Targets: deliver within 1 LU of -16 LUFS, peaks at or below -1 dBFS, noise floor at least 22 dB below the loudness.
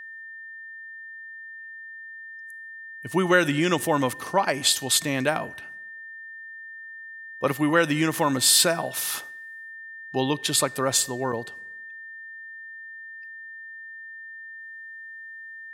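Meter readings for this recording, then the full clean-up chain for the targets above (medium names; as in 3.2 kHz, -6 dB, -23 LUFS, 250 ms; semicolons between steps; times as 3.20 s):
steady tone 1.8 kHz; tone level -38 dBFS; loudness -23.0 LUFS; peak level -6.0 dBFS; loudness target -16.0 LUFS
-> band-stop 1.8 kHz, Q 30; trim +7 dB; peak limiter -1 dBFS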